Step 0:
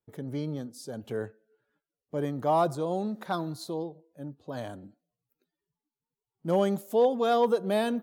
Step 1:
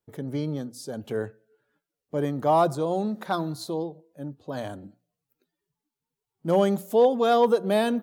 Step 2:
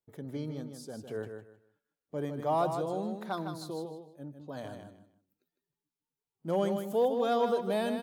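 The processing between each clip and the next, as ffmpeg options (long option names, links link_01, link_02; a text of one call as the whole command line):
ffmpeg -i in.wav -af "bandreject=frequency=60:width_type=h:width=6,bandreject=frequency=120:width_type=h:width=6,bandreject=frequency=180:width_type=h:width=6,volume=4dB" out.wav
ffmpeg -i in.wav -af "aecho=1:1:155|310|465:0.447|0.107|0.0257,volume=-8.5dB" out.wav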